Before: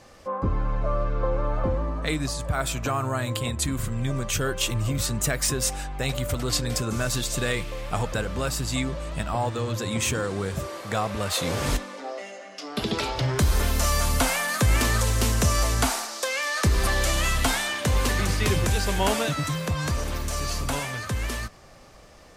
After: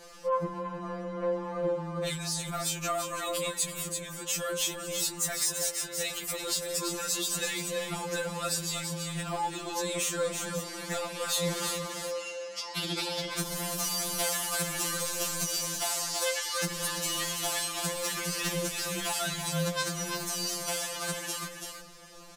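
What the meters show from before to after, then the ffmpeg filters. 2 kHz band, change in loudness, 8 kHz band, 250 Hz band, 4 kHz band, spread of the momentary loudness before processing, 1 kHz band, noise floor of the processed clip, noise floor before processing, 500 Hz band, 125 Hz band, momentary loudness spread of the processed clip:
-7.0 dB, -5.0 dB, -0.5 dB, -8.5 dB, -2.5 dB, 7 LU, -6.0 dB, -43 dBFS, -47 dBFS, -4.0 dB, -14.0 dB, 6 LU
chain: -filter_complex "[0:a]asoftclip=type=tanh:threshold=-19dB,highshelf=f=3.4k:g=9,asplit=2[a][b];[b]aecho=0:1:333:0.398[c];[a][c]amix=inputs=2:normalize=0,acompressor=threshold=-27dB:ratio=2.5,afftfilt=real='re*2.83*eq(mod(b,8),0)':imag='im*2.83*eq(mod(b,8),0)':win_size=2048:overlap=0.75"

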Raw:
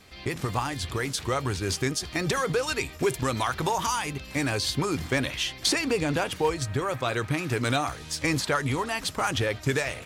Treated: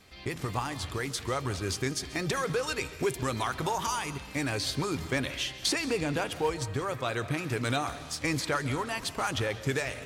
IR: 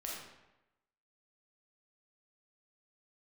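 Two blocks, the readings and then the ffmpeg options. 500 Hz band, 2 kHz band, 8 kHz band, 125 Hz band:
-4.0 dB, -4.0 dB, -4.0 dB, -4.0 dB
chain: -filter_complex "[0:a]asplit=2[a][b];[1:a]atrim=start_sample=2205,adelay=137[c];[b][c]afir=irnorm=-1:irlink=0,volume=-13.5dB[d];[a][d]amix=inputs=2:normalize=0,volume=-4dB"

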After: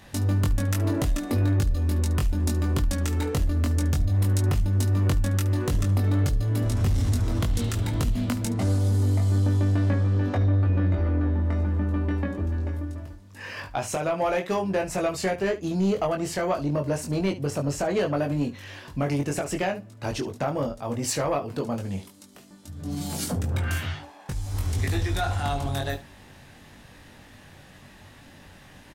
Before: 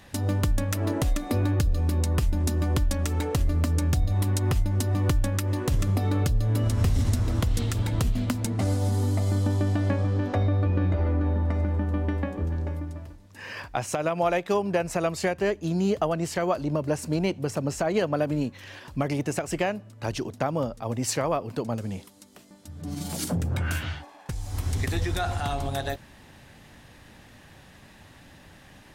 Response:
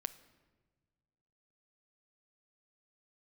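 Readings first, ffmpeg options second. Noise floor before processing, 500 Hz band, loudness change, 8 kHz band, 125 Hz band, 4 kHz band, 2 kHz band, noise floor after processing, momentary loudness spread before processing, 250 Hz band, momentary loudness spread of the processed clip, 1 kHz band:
-51 dBFS, 0.0 dB, +1.0 dB, +0.5 dB, +1.5 dB, +0.5 dB, 0.0 dB, -50 dBFS, 8 LU, +1.0 dB, 9 LU, -0.5 dB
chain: -af "aecho=1:1:21|72:0.631|0.158,asoftclip=type=tanh:threshold=-16dB"

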